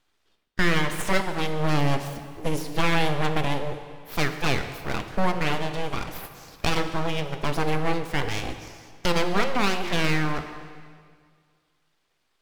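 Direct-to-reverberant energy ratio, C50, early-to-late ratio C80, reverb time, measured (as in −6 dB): 7.5 dB, 9.0 dB, 10.0 dB, 2.0 s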